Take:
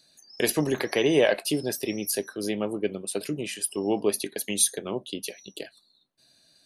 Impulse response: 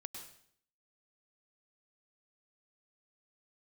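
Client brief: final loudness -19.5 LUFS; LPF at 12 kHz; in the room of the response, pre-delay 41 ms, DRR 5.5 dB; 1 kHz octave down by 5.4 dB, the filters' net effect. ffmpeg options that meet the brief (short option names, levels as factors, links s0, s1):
-filter_complex "[0:a]lowpass=12000,equalizer=f=1000:t=o:g=-8,asplit=2[s0][s1];[1:a]atrim=start_sample=2205,adelay=41[s2];[s1][s2]afir=irnorm=-1:irlink=0,volume=0.794[s3];[s0][s3]amix=inputs=2:normalize=0,volume=2.37"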